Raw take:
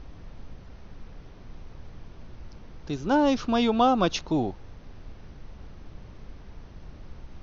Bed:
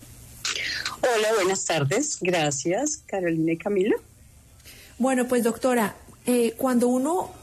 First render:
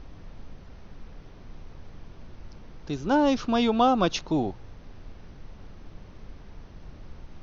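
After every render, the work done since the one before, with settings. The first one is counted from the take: de-hum 60 Hz, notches 2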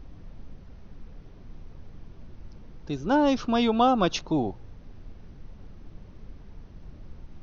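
denoiser 6 dB, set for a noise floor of -47 dBFS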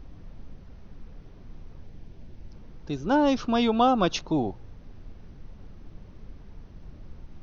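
1.85–2.52 bell 1200 Hz -7.5 dB 0.53 oct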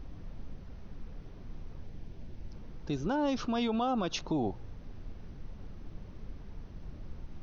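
compressor 2:1, threshold -26 dBFS, peak gain reduction 5.5 dB; limiter -23.5 dBFS, peak gain reduction 8 dB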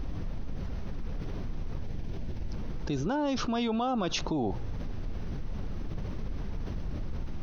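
fast leveller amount 70%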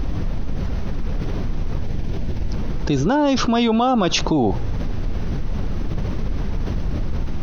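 gain +12 dB

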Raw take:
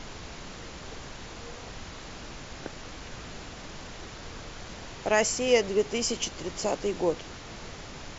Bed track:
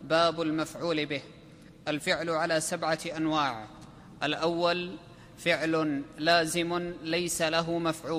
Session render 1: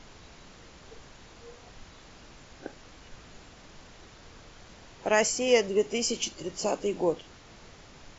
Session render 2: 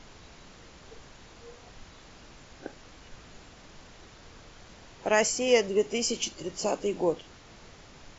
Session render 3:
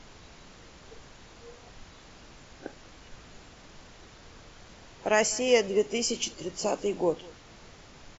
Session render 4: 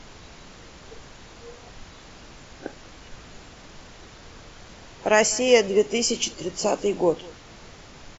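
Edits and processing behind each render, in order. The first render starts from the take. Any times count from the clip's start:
noise print and reduce 9 dB
nothing audible
echo 0.197 s -22.5 dB
gain +5.5 dB

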